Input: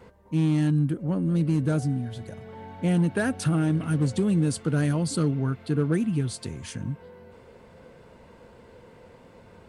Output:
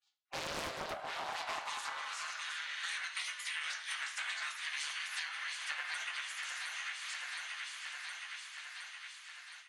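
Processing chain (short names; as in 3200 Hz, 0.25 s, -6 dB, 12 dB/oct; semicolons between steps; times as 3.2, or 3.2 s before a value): reverse delay 0.223 s, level -11 dB; three-band isolator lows -19 dB, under 250 Hz, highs -17 dB, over 6800 Hz; expander -43 dBFS; spectral gate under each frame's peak -30 dB weak; tilt shelf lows +4 dB, about 890 Hz; thinning echo 0.716 s, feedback 67%, high-pass 310 Hz, level -12.5 dB; on a send at -4 dB: reverb RT60 0.45 s, pre-delay 3 ms; on the sum: AGC gain up to 14 dB; high-pass sweep 560 Hz -> 1700 Hz, 0.83–2.71; compressor 6:1, threshold -47 dBFS, peak gain reduction 17 dB; Doppler distortion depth 0.67 ms; gain +9 dB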